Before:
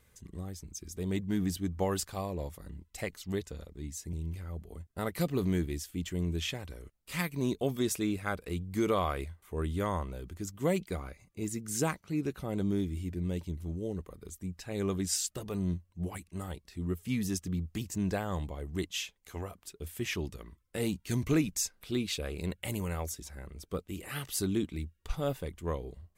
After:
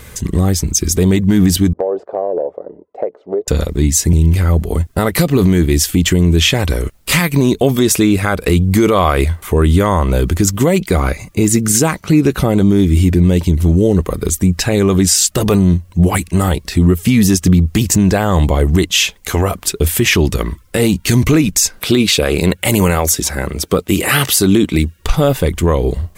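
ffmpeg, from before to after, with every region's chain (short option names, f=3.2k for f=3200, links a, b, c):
-filter_complex "[0:a]asettb=1/sr,asplit=3[a][b][c];[a]atrim=end=1.734[d];[b]atrim=start=1.73:end=3.48,asetpts=PTS-STARTPTS,afade=t=in:d=0.004:c=qsin,afade=t=out:st=1.746:d=0.004:c=qsin,asuperpass=centerf=530:order=4:qfactor=1.8,acompressor=threshold=-43dB:ratio=5:attack=3.2:release=140:knee=1:detection=peak[e];[c]atrim=start=3.476[f];[d][e]acrossfade=d=0.004:c1=hsin:c2=qsin[g];[g][f]acrossfade=d=0.004:c1=qsin:c2=hsin,asettb=1/sr,asplit=3[h][i][j];[h]atrim=end=21.794[k];[i]atrim=start=21.79:end=25,asetpts=PTS-STARTPTS,afade=t=in:d=0.004:c=qsin,afade=t=out:st=3.206:d=0.004:c=qsin,highpass=68,lowshelf=f=150:g=-6[l];[j]atrim=start=24.996[m];[k][l]acrossfade=d=0.004:c1=hsin:c2=qsin[n];[n][m]acrossfade=d=0.004:c1=qsin:c2=hsin,acompressor=threshold=-36dB:ratio=4,alimiter=level_in=30.5dB:limit=-1dB:release=50:level=0:latency=1,volume=-1dB"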